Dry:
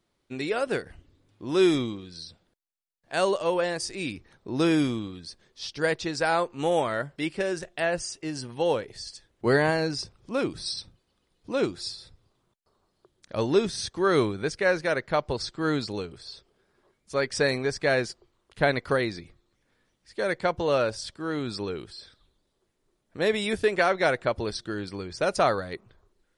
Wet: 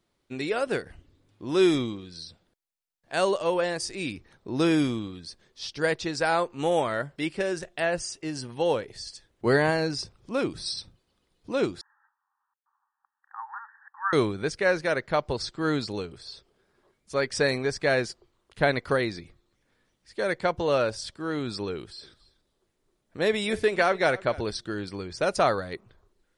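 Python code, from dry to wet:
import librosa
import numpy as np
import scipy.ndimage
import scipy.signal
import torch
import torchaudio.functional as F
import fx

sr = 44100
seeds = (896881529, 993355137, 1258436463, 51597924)

y = fx.brickwall_bandpass(x, sr, low_hz=780.0, high_hz=1900.0, at=(11.81, 14.13))
y = fx.echo_single(y, sr, ms=280, db=-20.0, at=(21.75, 24.41))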